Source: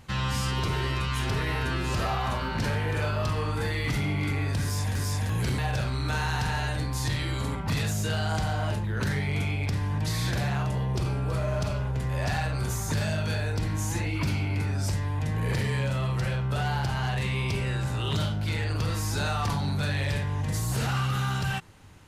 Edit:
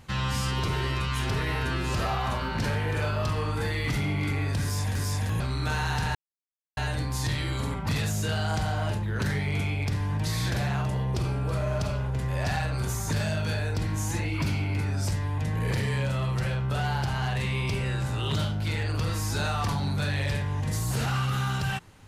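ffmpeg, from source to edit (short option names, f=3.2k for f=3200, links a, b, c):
-filter_complex "[0:a]asplit=3[a][b][c];[a]atrim=end=5.402[d];[b]atrim=start=5.828:end=6.58,asetpts=PTS-STARTPTS,afade=t=out:st=0.748:d=0.004:c=hsin,apad=pad_dur=0.62[e];[c]atrim=start=6.58,asetpts=PTS-STARTPTS,afade=t=in:d=0.004:c=hsin[f];[e][f]concat=n=2:v=0:a=1[g];[d][g]acrossfade=d=0.004:c1=hsin:c2=hsin"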